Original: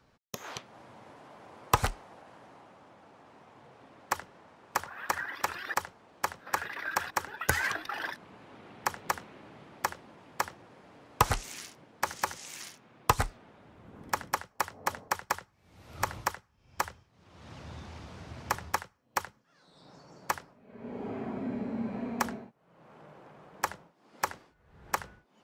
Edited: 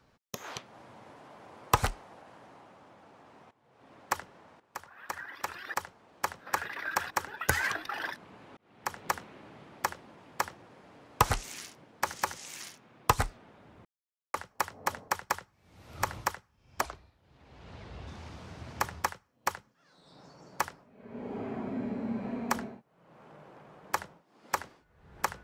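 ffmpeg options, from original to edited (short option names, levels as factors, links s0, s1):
-filter_complex "[0:a]asplit=8[s0][s1][s2][s3][s4][s5][s6][s7];[s0]atrim=end=3.51,asetpts=PTS-STARTPTS,afade=t=out:st=3.506:d=0.004:c=hsin:silence=0.141254[s8];[s1]atrim=start=3.51:end=4.6,asetpts=PTS-STARTPTS,afade=t=in:d=0.41:c=qua:silence=0.141254,afade=t=out:st=1.086:d=0.004:c=hsin:silence=0.211349[s9];[s2]atrim=start=4.6:end=8.57,asetpts=PTS-STARTPTS,afade=t=in:d=1.8:silence=0.211349,afade=t=out:st=3.966:d=0.004:c=hsin[s10];[s3]atrim=start=8.57:end=13.85,asetpts=PTS-STARTPTS,afade=t=in:d=0.48,afade=t=out:st=5.276:d=0.004:c=hsin[s11];[s4]atrim=start=13.85:end=14.34,asetpts=PTS-STARTPTS,volume=0[s12];[s5]atrim=start=14.34:end=16.814,asetpts=PTS-STARTPTS,afade=t=in:d=0.004:c=hsin[s13];[s6]atrim=start=16.81:end=17.77,asetpts=PTS-STARTPTS,asetrate=33516,aresample=44100,atrim=end_sample=55705,asetpts=PTS-STARTPTS[s14];[s7]atrim=start=17.766[s15];[s8][s9][s10][s11][s12][s13]concat=n=6:v=0:a=1[s16];[s16][s14]acrossfade=d=0.004:c1=hsin:c2=hsin[s17];[s17][s15]acrossfade=d=0.004:c1=hsin:c2=hsin"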